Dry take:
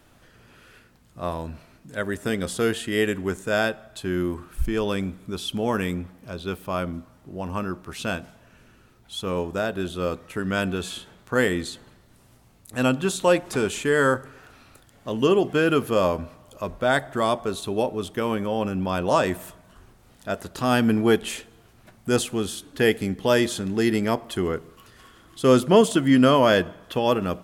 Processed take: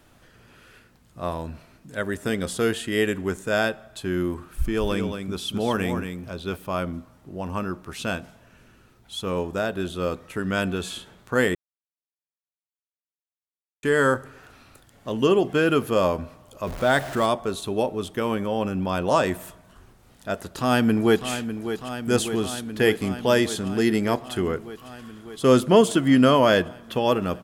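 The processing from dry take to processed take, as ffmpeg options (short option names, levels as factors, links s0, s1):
-filter_complex "[0:a]asplit=3[s0][s1][s2];[s0]afade=t=out:st=4.64:d=0.02[s3];[s1]aecho=1:1:227:0.447,afade=t=in:st=4.64:d=0.02,afade=t=out:st=6.55:d=0.02[s4];[s2]afade=t=in:st=6.55:d=0.02[s5];[s3][s4][s5]amix=inputs=3:normalize=0,asettb=1/sr,asplit=3[s6][s7][s8];[s6]atrim=end=16.674[s9];[s7]atrim=start=16.67:end=17.26,asetpts=PTS-STARTPTS,afade=t=in:d=0.004:c=qsin,afade=t=out:st=0.586:d=0.004:c=qsin,aeval=exprs='val(0)+0.5*0.0266*sgn(val(0))':c=same[s10];[s8]atrim=start=17.256[s11];[s9][s10]acrossfade=d=0.004:c1=hsin:c2=qsin[s12];[s12][s11]acrossfade=d=0.004:c1=qsin:c2=hsin,asplit=2[s13][s14];[s14]afade=t=in:st=20.36:d=0.01,afade=t=out:st=21.28:d=0.01,aecho=0:1:600|1200|1800|2400|3000|3600|4200|4800|5400|6000|6600|7200:0.316228|0.252982|0.202386|0.161909|0.129527|0.103622|0.0828972|0.0663178|0.0530542|0.0424434|0.0339547|0.0271638[s15];[s13][s15]amix=inputs=2:normalize=0,asplit=3[s16][s17][s18];[s16]atrim=end=11.55,asetpts=PTS-STARTPTS,afade=t=out:st=11.546:d=0.004:c=hsin[s19];[s17]atrim=start=11.55:end=13.83,asetpts=PTS-STARTPTS,volume=0[s20];[s18]atrim=start=13.83,asetpts=PTS-STARTPTS,afade=t=in:d=0.004:c=hsin[s21];[s19][s20][s21]concat=n=3:v=0:a=1"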